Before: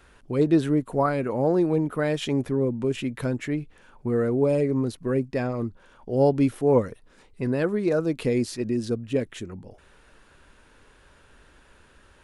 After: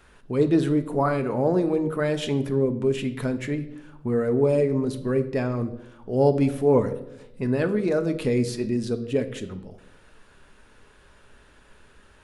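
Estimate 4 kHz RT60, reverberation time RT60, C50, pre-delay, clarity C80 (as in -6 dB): 0.60 s, 0.90 s, 13.0 dB, 5 ms, 16.0 dB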